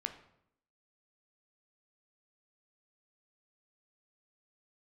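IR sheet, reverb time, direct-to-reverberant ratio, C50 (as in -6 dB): 0.75 s, 6.5 dB, 10.5 dB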